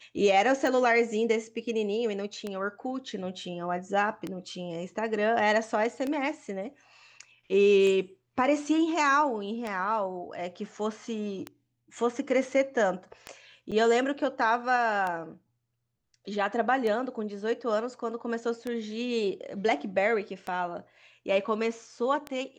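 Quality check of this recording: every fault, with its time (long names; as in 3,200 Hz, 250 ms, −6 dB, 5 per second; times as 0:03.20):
scratch tick 33 1/3 rpm −19 dBFS
0:13.71–0:13.72: drop-out 6.7 ms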